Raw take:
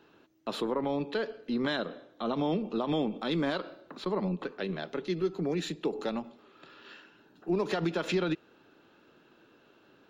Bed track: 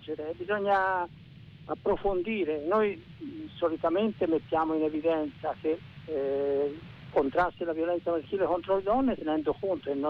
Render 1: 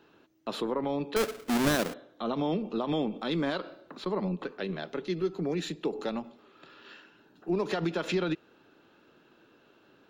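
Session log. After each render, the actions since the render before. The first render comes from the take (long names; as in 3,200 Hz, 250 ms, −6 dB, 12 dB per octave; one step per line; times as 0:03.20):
0:01.16–0:01.94: each half-wave held at its own peak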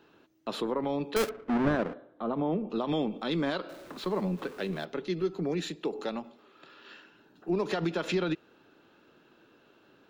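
0:01.29–0:02.70: low-pass filter 1,600 Hz
0:03.69–0:04.85: converter with a step at zero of −46 dBFS
0:05.67–0:06.91: low-shelf EQ 180 Hz −6.5 dB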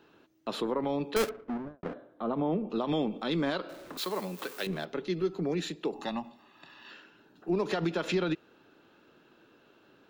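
0:01.22–0:01.83: fade out and dull
0:03.97–0:04.67: RIAA equalisation recording
0:05.93–0:06.91: comb filter 1.1 ms, depth 74%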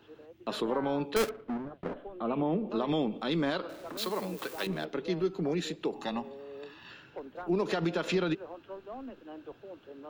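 mix in bed track −17 dB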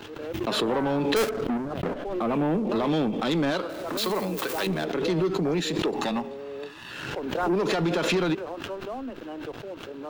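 leveller curve on the samples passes 2
background raised ahead of every attack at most 36 dB per second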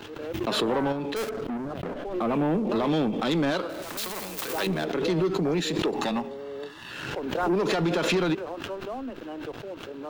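0:00.92–0:02.14: downward compressor 3 to 1, threshold −30 dBFS
0:03.82–0:04.48: every bin compressed towards the loudest bin 2 to 1
0:06.29–0:06.82: Butterworth band-reject 2,500 Hz, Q 7.8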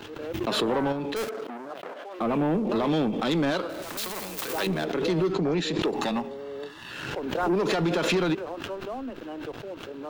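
0:01.28–0:02.19: high-pass filter 320 Hz → 770 Hz
0:05.32–0:05.82: low-pass filter 6,400 Hz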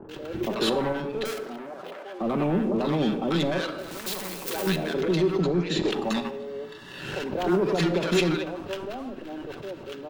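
multiband delay without the direct sound lows, highs 90 ms, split 990 Hz
rectangular room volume 3,200 cubic metres, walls furnished, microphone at 1.1 metres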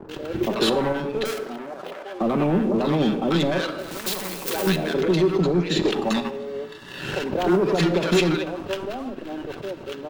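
leveller curve on the samples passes 1
transient designer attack +3 dB, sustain −1 dB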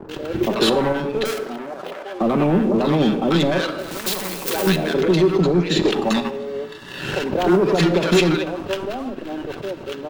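level +3.5 dB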